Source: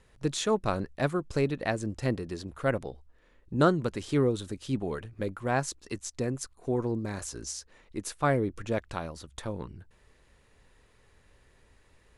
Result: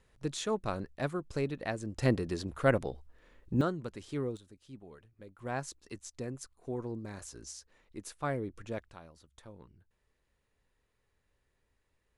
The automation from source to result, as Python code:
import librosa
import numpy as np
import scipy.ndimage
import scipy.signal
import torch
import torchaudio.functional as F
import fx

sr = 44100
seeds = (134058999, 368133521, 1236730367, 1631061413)

y = fx.gain(x, sr, db=fx.steps((0.0, -6.0), (1.98, 1.5), (3.61, -10.0), (4.37, -19.0), (5.39, -8.5), (8.89, -16.0)))